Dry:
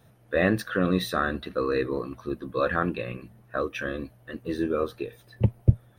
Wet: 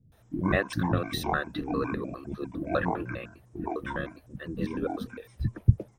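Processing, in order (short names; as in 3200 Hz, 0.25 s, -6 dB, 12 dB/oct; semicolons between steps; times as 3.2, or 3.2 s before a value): trilling pitch shifter -9 st, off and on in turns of 0.101 s; bands offset in time lows, highs 0.12 s, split 310 Hz; gain -1 dB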